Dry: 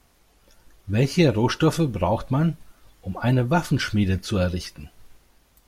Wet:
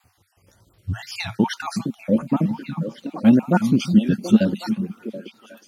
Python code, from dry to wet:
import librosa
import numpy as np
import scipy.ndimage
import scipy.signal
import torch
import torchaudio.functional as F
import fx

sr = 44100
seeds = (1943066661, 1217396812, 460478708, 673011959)

y = fx.spec_dropout(x, sr, seeds[0], share_pct=44)
y = fx.wow_flutter(y, sr, seeds[1], rate_hz=2.1, depth_cents=110.0)
y = fx.filter_sweep_highpass(y, sr, from_hz=96.0, to_hz=220.0, start_s=0.8, end_s=1.58, q=5.3)
y = fx.echo_stepped(y, sr, ms=365, hz=150.0, octaves=1.4, feedback_pct=70, wet_db=-4.0)